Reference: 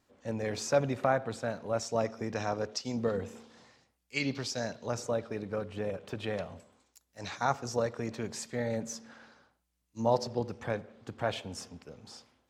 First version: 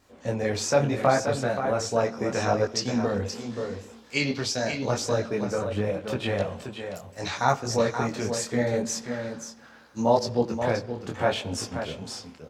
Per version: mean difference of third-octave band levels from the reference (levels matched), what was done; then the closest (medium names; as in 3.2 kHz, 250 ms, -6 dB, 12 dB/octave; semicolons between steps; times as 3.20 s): 4.5 dB: in parallel at +0.5 dB: compression, threshold -40 dBFS, peak gain reduction 18 dB; on the sum: delay 529 ms -7.5 dB; detune thickener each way 27 cents; trim +8.5 dB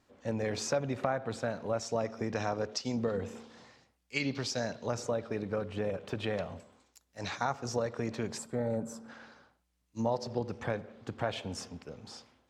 2.5 dB: time-frequency box 8.38–9.08 s, 1.6–7.2 kHz -12 dB; treble shelf 9.6 kHz -9 dB; compression 3:1, threshold -32 dBFS, peak gain reduction 9 dB; trim +3 dB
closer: second